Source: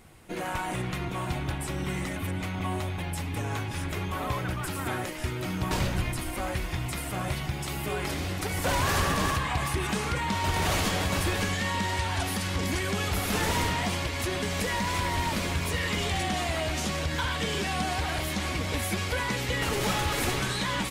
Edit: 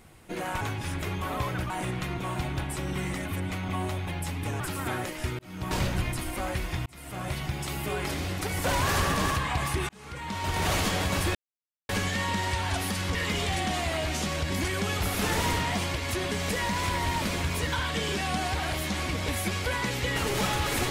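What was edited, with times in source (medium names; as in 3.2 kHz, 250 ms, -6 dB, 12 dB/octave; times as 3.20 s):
3.51–4.60 s: move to 0.61 s
5.39–5.78 s: fade in
6.86–7.59 s: fade in equal-power
9.89–10.68 s: fade in linear
11.35 s: insert silence 0.54 s
15.78–17.13 s: move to 12.61 s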